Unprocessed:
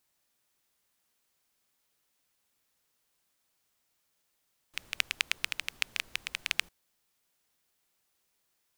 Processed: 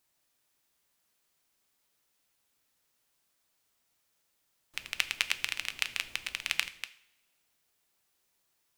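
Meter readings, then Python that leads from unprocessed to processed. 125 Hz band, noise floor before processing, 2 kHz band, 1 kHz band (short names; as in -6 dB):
+1.0 dB, -77 dBFS, +1.0 dB, +0.5 dB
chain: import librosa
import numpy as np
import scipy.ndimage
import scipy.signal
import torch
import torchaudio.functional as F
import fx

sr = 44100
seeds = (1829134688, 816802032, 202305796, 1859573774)

y = fx.reverse_delay(x, sr, ms=146, wet_db=-10)
y = fx.rev_double_slope(y, sr, seeds[0], early_s=0.51, late_s=1.6, knee_db=-20, drr_db=11.0)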